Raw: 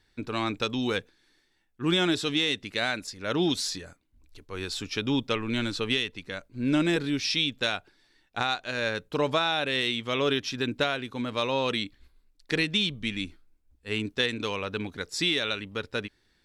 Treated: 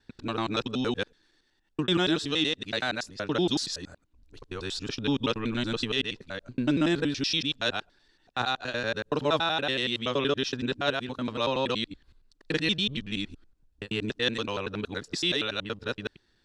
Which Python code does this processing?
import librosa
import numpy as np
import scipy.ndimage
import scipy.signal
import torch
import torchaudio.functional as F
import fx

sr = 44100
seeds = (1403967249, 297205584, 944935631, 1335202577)

y = fx.local_reverse(x, sr, ms=94.0)
y = scipy.signal.sosfilt(scipy.signal.butter(2, 7300.0, 'lowpass', fs=sr, output='sos'), y)
y = fx.peak_eq(y, sr, hz=2200.0, db=-8.0, octaves=0.23)